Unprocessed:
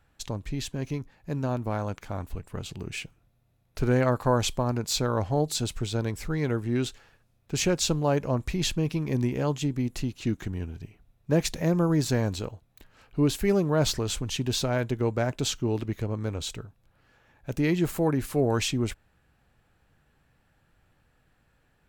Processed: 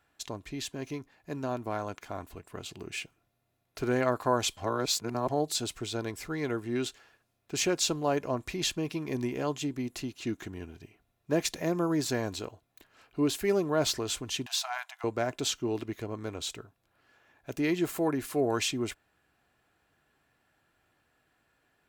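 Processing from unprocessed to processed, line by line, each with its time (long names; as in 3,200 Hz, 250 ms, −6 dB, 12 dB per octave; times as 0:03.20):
0:04.57–0:05.29: reverse
0:14.46–0:15.04: linear-phase brick-wall high-pass 650 Hz
whole clip: high-pass filter 290 Hz 6 dB per octave; comb filter 2.9 ms, depth 30%; level −1.5 dB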